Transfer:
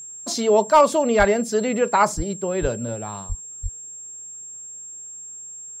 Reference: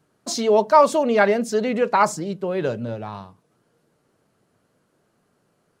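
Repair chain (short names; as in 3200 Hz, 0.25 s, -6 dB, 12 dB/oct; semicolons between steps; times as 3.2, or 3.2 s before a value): clip repair -6 dBFS; notch 7500 Hz, Q 30; de-plosive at 1.18/2.16/2.61/3.28/3.62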